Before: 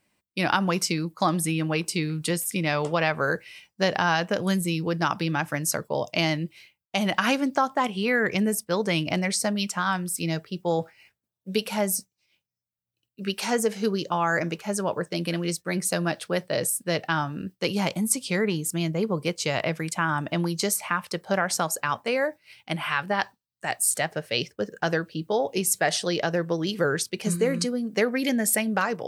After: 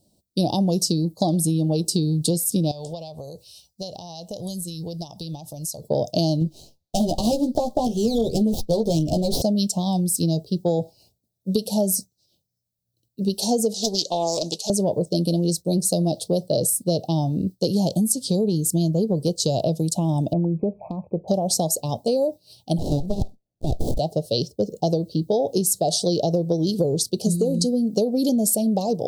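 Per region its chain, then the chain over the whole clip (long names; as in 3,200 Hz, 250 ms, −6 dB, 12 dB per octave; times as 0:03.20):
0:02.71–0:05.84: parametric band 280 Hz −14.5 dB 2.5 octaves + downward compressor 3 to 1, threshold −37 dBFS
0:06.40–0:09.42: double-tracking delay 13 ms −3.5 dB + windowed peak hold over 5 samples
0:13.74–0:14.70: meter weighting curve ITU-R 468 + highs frequency-modulated by the lows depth 0.37 ms
0:20.33–0:21.28: linear-phase brick-wall low-pass 2,600 Hz + downward compressor 2 to 1, threshold −28 dBFS
0:22.78–0:23.99: high-pass filter 110 Hz + windowed peak hold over 33 samples
whole clip: elliptic band-stop filter 700–4,000 Hz, stop band 60 dB; low-shelf EQ 180 Hz +5.5 dB; downward compressor, threshold −26 dBFS; level +8.5 dB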